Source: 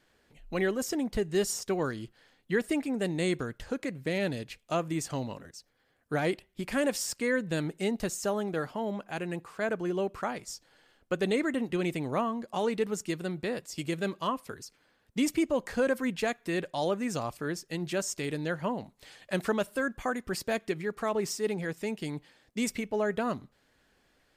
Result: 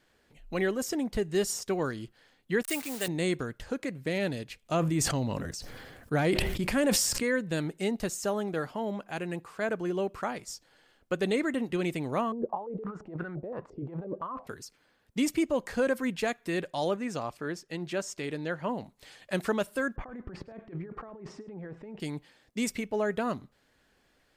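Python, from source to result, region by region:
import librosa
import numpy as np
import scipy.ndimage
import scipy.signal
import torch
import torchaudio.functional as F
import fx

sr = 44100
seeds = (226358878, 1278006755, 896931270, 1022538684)

y = fx.chain(x, sr, fx.delta_hold(step_db=-42.5),
    fx.tilt_eq(slope=3.5), at=(2.63, 3.08))
y = fx.chain(y, sr, fx.low_shelf(hz=210.0, db=7.0),
    fx.sustainer(db_per_s=29.0), at=(4.62, 7.23))
y = fx.chain(y, sr, fx.over_compress(threshold_db=-40.0, ratio=-1.0),
    fx.filter_held_lowpass(hz=5.8, low_hz=430.0, high_hz=1500.0), at=(12.32, 14.47))
y = fx.chain(y, sr, fx.lowpass(hz=4000.0, slope=6),
    fx.low_shelf(hz=170.0, db=-6.0), at=(16.96, 18.69))
y = fx.chain(y, sr, fx.lowpass(hz=1200.0, slope=12),
    fx.over_compress(threshold_db=-42.0, ratio=-1.0),
    fx.echo_single(ms=104, db=-20.0), at=(19.96, 22.0))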